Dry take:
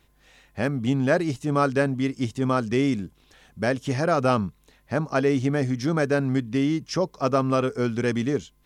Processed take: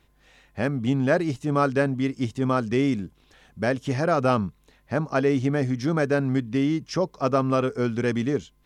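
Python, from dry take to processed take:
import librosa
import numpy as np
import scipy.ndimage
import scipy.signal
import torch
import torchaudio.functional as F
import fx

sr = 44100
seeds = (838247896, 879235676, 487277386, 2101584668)

y = fx.high_shelf(x, sr, hz=5000.0, db=-5.0)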